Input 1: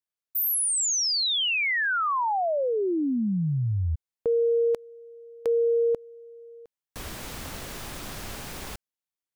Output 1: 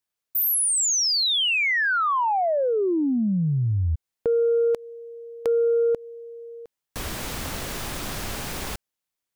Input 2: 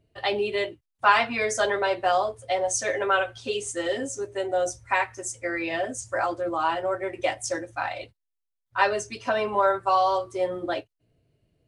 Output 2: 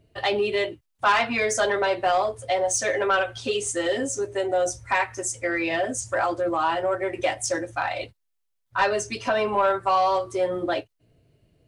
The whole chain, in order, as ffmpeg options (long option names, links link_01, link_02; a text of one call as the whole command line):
ffmpeg -i in.wav -filter_complex "[0:a]asplit=2[link_01][link_02];[link_02]acompressor=threshold=-31dB:ratio=6:attack=4.9:release=271:detection=peak,volume=1dB[link_03];[link_01][link_03]amix=inputs=2:normalize=0,asoftclip=type=tanh:threshold=-12dB" out.wav